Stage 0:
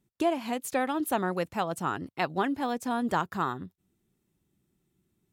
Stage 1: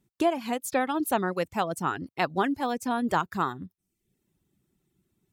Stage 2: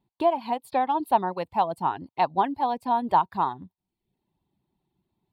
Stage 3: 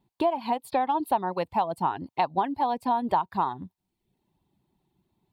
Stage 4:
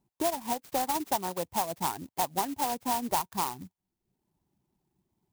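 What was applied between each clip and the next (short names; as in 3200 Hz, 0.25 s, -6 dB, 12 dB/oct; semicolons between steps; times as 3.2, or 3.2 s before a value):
reverb removal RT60 0.61 s; gain +2.5 dB
EQ curve 490 Hz 0 dB, 940 Hz +14 dB, 1300 Hz -5 dB, 4400 Hz +2 dB, 6200 Hz -23 dB, 9100 Hz -11 dB; gain -3.5 dB
compressor 3:1, threshold -27 dBFS, peak gain reduction 9.5 dB; gain +4 dB
clock jitter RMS 0.097 ms; gain -4.5 dB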